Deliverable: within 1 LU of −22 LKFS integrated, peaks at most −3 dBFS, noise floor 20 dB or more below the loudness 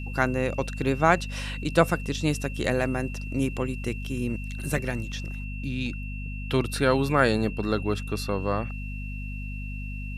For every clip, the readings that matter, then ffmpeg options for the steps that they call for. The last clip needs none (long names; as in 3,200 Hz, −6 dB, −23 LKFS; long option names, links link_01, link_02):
mains hum 50 Hz; hum harmonics up to 250 Hz; level of the hum −31 dBFS; interfering tone 2,700 Hz; level of the tone −41 dBFS; integrated loudness −27.5 LKFS; sample peak −5.0 dBFS; target loudness −22.0 LKFS
→ -af "bandreject=frequency=50:width_type=h:width=6,bandreject=frequency=100:width_type=h:width=6,bandreject=frequency=150:width_type=h:width=6,bandreject=frequency=200:width_type=h:width=6,bandreject=frequency=250:width_type=h:width=6"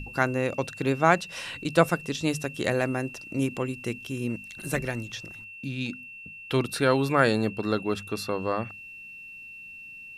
mains hum none found; interfering tone 2,700 Hz; level of the tone −41 dBFS
→ -af "bandreject=frequency=2700:width=30"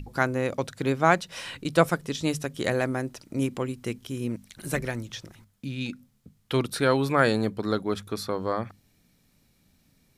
interfering tone none found; integrated loudness −27.5 LKFS; sample peak −5.5 dBFS; target loudness −22.0 LKFS
→ -af "volume=5.5dB,alimiter=limit=-3dB:level=0:latency=1"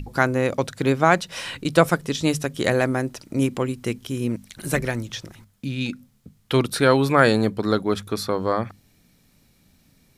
integrated loudness −22.5 LKFS; sample peak −3.0 dBFS; background noise floor −60 dBFS